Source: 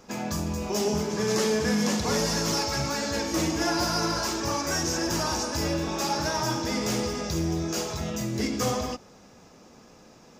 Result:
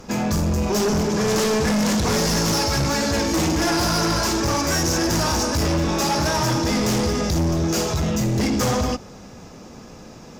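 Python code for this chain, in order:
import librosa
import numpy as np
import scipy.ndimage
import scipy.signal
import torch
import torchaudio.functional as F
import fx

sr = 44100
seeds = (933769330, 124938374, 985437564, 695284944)

p1 = fx.low_shelf(x, sr, hz=190.0, db=8.0)
p2 = fx.fold_sine(p1, sr, drive_db=8, ceiling_db=-16.5)
y = p1 + (p2 * librosa.db_to_amplitude(-7.0))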